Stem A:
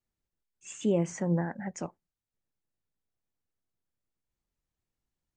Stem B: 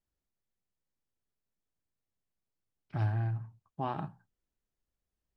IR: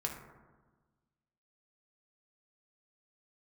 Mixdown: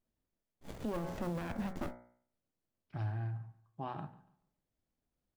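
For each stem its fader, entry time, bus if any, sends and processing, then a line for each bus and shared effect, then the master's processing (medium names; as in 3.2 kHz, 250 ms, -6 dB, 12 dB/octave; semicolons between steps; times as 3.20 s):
-0.5 dB, 0.00 s, no send, no echo send, fifteen-band graphic EQ 250 Hz +8 dB, 630 Hz +10 dB, 4 kHz +10 dB; modulation noise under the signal 23 dB; sliding maximum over 33 samples
-5.5 dB, 0.00 s, no send, echo send -20.5 dB, none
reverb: none
echo: feedback delay 143 ms, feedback 29%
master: de-hum 60.9 Hz, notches 38; peak limiter -28.5 dBFS, peak gain reduction 15 dB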